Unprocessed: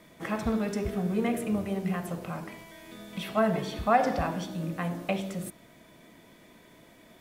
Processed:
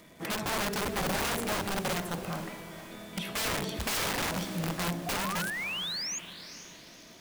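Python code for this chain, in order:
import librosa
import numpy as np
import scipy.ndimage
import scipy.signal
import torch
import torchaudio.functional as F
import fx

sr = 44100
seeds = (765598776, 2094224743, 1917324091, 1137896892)

p1 = fx.spec_paint(x, sr, seeds[0], shape='rise', start_s=5.06, length_s=1.13, low_hz=690.0, high_hz=6900.0, level_db=-35.0)
p2 = (np.mod(10.0 ** (26.0 / 20.0) * p1 + 1.0, 2.0) - 1.0) / 10.0 ** (26.0 / 20.0)
p3 = fx.dmg_crackle(p2, sr, seeds[1], per_s=280.0, level_db=-46.0)
y = p3 + fx.echo_diffused(p3, sr, ms=474, feedback_pct=43, wet_db=-12.5, dry=0)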